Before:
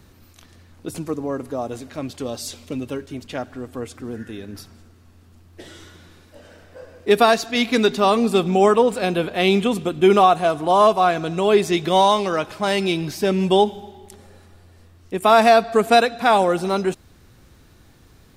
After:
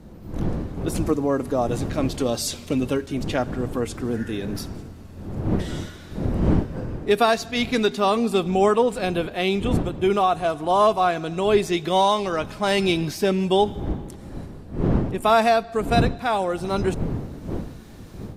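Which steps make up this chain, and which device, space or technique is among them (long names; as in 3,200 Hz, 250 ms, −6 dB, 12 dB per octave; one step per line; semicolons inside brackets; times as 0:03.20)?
smartphone video outdoors (wind on the microphone −27 dBFS; automatic gain control; level −6 dB; AAC 96 kbit/s 32,000 Hz)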